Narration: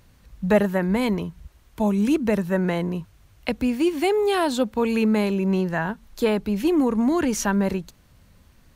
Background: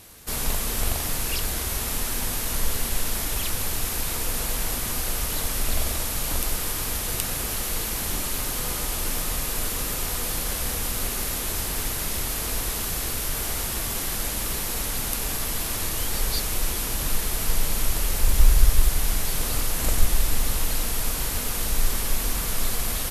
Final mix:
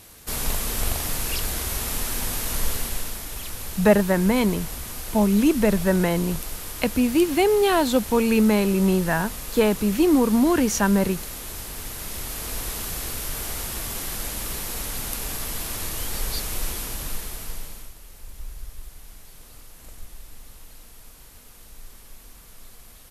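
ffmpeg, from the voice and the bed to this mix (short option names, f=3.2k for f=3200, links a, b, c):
-filter_complex "[0:a]adelay=3350,volume=2dB[a];[1:a]volume=4.5dB,afade=t=out:st=2.68:d=0.52:silence=0.446684,afade=t=in:st=11.8:d=0.88:silence=0.595662,afade=t=out:st=16.67:d=1.27:silence=0.11885[b];[a][b]amix=inputs=2:normalize=0"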